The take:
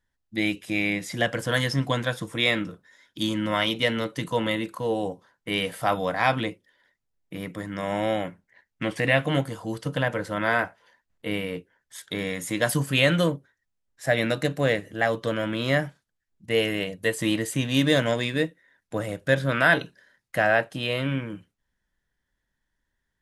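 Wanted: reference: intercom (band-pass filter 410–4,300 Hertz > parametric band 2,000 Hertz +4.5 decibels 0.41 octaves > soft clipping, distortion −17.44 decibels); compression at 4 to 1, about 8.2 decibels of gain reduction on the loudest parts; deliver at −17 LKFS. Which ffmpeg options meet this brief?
ffmpeg -i in.wav -af "acompressor=threshold=-25dB:ratio=4,highpass=410,lowpass=4300,equalizer=frequency=2000:width_type=o:width=0.41:gain=4.5,asoftclip=threshold=-19.5dB,volume=16dB" out.wav

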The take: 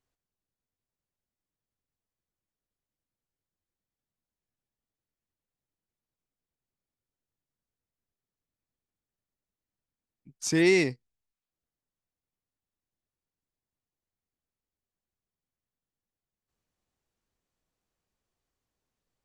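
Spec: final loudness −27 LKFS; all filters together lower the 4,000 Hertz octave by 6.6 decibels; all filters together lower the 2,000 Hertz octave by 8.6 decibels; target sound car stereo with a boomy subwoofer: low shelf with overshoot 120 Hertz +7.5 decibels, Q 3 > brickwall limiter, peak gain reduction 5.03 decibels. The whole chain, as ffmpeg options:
ffmpeg -i in.wav -af "lowshelf=frequency=120:width_type=q:width=3:gain=7.5,equalizer=frequency=2000:width_type=o:gain=-7.5,equalizer=frequency=4000:width_type=o:gain=-7.5,volume=3dB,alimiter=limit=-17.5dB:level=0:latency=1" out.wav

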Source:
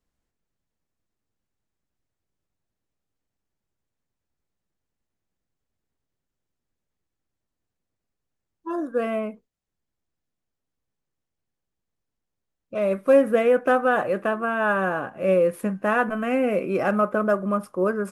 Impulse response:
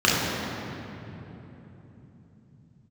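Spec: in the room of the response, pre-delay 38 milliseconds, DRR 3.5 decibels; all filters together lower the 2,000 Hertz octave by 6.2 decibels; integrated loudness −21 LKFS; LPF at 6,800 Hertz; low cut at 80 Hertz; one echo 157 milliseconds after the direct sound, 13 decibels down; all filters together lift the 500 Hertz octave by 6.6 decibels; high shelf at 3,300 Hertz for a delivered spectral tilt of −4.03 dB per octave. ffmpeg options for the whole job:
-filter_complex "[0:a]highpass=80,lowpass=6800,equalizer=frequency=500:width_type=o:gain=8,equalizer=frequency=2000:width_type=o:gain=-8.5,highshelf=frequency=3300:gain=-5.5,aecho=1:1:157:0.224,asplit=2[link_01][link_02];[1:a]atrim=start_sample=2205,adelay=38[link_03];[link_02][link_03]afir=irnorm=-1:irlink=0,volume=-24.5dB[link_04];[link_01][link_04]amix=inputs=2:normalize=0,volume=-5.5dB"

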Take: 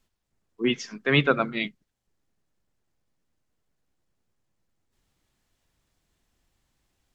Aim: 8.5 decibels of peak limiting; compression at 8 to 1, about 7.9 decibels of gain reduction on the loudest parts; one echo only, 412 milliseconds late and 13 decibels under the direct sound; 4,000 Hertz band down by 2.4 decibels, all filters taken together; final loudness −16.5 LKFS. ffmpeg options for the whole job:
ffmpeg -i in.wav -af "equalizer=frequency=4000:width_type=o:gain=-3.5,acompressor=threshold=-23dB:ratio=8,alimiter=limit=-22.5dB:level=0:latency=1,aecho=1:1:412:0.224,volume=19dB" out.wav

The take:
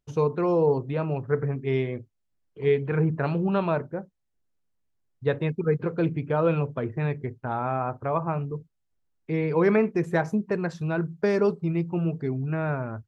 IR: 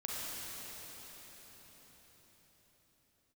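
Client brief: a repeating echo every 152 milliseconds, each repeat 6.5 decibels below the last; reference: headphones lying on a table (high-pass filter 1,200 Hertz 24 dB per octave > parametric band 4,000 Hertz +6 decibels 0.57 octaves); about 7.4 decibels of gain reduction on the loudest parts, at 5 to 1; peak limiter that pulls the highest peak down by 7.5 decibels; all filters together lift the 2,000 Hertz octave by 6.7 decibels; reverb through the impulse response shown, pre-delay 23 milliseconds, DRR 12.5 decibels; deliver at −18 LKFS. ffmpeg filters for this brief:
-filter_complex "[0:a]equalizer=frequency=2000:width_type=o:gain=8.5,acompressor=threshold=-25dB:ratio=5,alimiter=limit=-22dB:level=0:latency=1,aecho=1:1:152|304|456|608|760|912:0.473|0.222|0.105|0.0491|0.0231|0.0109,asplit=2[link_01][link_02];[1:a]atrim=start_sample=2205,adelay=23[link_03];[link_02][link_03]afir=irnorm=-1:irlink=0,volume=-15.5dB[link_04];[link_01][link_04]amix=inputs=2:normalize=0,highpass=frequency=1200:width=0.5412,highpass=frequency=1200:width=1.3066,equalizer=frequency=4000:width_type=o:width=0.57:gain=6,volume=22dB"

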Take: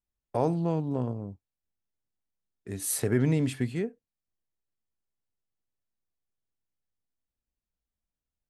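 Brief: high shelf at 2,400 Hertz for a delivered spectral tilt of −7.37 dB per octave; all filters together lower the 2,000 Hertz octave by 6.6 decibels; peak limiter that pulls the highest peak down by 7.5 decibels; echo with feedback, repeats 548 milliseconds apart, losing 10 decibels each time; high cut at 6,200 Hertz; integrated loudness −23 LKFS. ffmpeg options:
ffmpeg -i in.wav -af "lowpass=6200,equalizer=frequency=2000:width_type=o:gain=-4.5,highshelf=frequency=2400:gain=-7.5,alimiter=limit=-21dB:level=0:latency=1,aecho=1:1:548|1096|1644|2192:0.316|0.101|0.0324|0.0104,volume=10.5dB" out.wav

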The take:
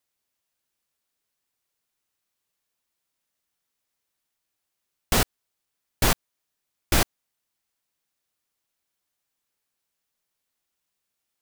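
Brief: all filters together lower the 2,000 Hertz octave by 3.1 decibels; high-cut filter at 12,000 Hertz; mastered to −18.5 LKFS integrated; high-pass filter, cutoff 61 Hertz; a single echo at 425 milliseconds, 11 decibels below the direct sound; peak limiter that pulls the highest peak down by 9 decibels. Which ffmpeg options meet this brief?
ffmpeg -i in.wav -af "highpass=61,lowpass=12000,equalizer=frequency=2000:width_type=o:gain=-4,alimiter=limit=-19dB:level=0:latency=1,aecho=1:1:425:0.282,volume=17.5dB" out.wav

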